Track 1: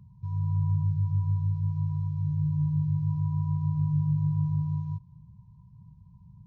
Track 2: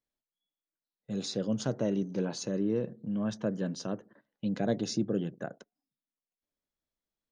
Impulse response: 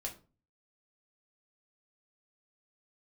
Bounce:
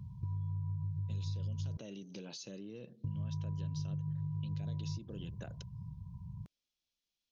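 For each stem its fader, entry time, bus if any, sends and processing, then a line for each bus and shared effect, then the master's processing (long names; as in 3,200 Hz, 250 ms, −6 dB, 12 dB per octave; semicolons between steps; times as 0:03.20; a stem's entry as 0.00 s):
+3.0 dB, 0.00 s, muted 0:01.77–0:03.04, no send, downward compressor 2.5 to 1, threshold −40 dBFS, peak gain reduction 12 dB
−6.5 dB, 0.00 s, no send, flat-topped bell 3,900 Hz +15 dB; brickwall limiter −22.5 dBFS, peak gain reduction 12.5 dB; downward compressor, threshold −38 dBFS, peak gain reduction 10.5 dB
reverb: not used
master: parametric band 83 Hz +3.5 dB 1.6 octaves; downward compressor, threshold −35 dBFS, peak gain reduction 7.5 dB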